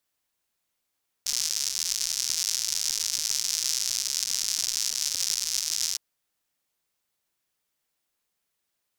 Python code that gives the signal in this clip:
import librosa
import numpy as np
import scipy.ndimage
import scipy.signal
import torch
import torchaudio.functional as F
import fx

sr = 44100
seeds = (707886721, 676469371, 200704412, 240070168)

y = fx.rain(sr, seeds[0], length_s=4.71, drops_per_s=160.0, hz=5600.0, bed_db=-29)